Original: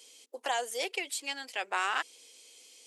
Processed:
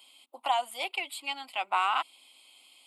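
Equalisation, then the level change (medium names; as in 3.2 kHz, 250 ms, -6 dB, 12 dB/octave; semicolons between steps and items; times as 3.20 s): peaking EQ 900 Hz +7.5 dB 2.9 oct; static phaser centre 1.7 kHz, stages 6; 0.0 dB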